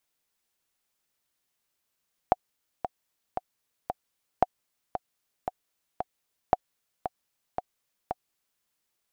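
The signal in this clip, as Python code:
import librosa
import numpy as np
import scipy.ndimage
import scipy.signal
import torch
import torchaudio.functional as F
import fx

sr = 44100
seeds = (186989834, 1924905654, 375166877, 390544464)

y = fx.click_track(sr, bpm=114, beats=4, bars=3, hz=737.0, accent_db=10.0, level_db=-6.0)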